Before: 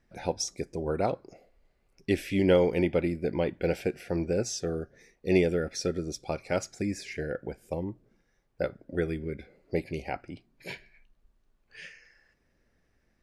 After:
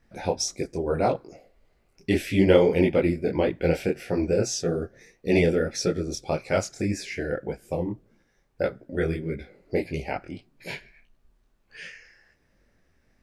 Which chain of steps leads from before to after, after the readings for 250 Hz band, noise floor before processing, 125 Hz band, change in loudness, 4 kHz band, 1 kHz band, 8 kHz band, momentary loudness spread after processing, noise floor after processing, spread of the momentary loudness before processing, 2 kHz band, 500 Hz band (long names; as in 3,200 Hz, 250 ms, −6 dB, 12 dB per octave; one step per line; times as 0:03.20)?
+4.5 dB, −72 dBFS, +5.0 dB, +4.5 dB, +5.0 dB, +5.0 dB, +5.0 dB, 17 LU, −68 dBFS, 18 LU, +5.0 dB, +4.5 dB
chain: micro pitch shift up and down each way 59 cents
level +8.5 dB